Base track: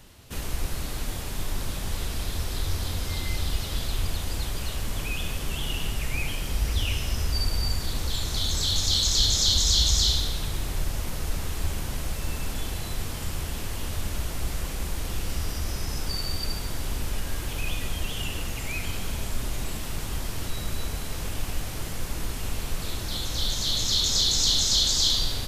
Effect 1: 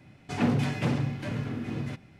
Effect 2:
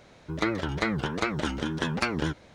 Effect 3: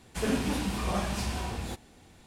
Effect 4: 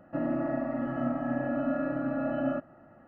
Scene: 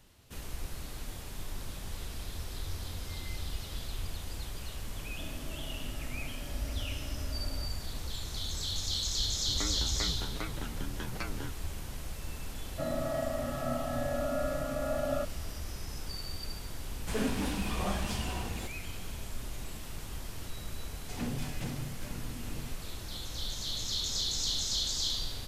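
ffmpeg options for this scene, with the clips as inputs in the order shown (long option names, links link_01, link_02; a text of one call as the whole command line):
ffmpeg -i bed.wav -i cue0.wav -i cue1.wav -i cue2.wav -i cue3.wav -filter_complex "[4:a]asplit=2[link_01][link_02];[0:a]volume=-10dB[link_03];[link_01]acompressor=threshold=-44dB:ratio=6:attack=3.2:release=140:knee=1:detection=peak[link_04];[2:a]afreqshift=-34[link_05];[link_02]aecho=1:1:1.6:0.7[link_06];[1:a]bass=frequency=250:gain=2,treble=frequency=4000:gain=13[link_07];[link_04]atrim=end=3.07,asetpts=PTS-STARTPTS,volume=-3dB,afade=type=in:duration=0.004:curve=hsin,afade=type=out:start_time=3.066:duration=0.004:curve=hsin,adelay=5060[link_08];[link_05]atrim=end=2.54,asetpts=PTS-STARTPTS,volume=-12.5dB,afade=type=in:duration=0.004:curve=hsin,afade=type=out:start_time=2.536:duration=0.004:curve=hsin,adelay=9180[link_09];[link_06]atrim=end=3.07,asetpts=PTS-STARTPTS,volume=-4dB,afade=type=in:duration=0.004:curve=hsin,afade=type=out:start_time=3.066:duration=0.004:curve=hsin,adelay=12650[link_10];[3:a]atrim=end=2.26,asetpts=PTS-STARTPTS,volume=-3.5dB,afade=type=in:duration=0.004:curve=hsin,afade=type=out:start_time=2.256:duration=0.004:curve=hsin,adelay=16920[link_11];[link_07]atrim=end=2.19,asetpts=PTS-STARTPTS,volume=-13dB,afade=type=in:duration=0.004:curve=hsin,afade=type=out:start_time=2.186:duration=0.004:curve=hsin,adelay=20790[link_12];[link_03][link_08][link_09][link_10][link_11][link_12]amix=inputs=6:normalize=0" out.wav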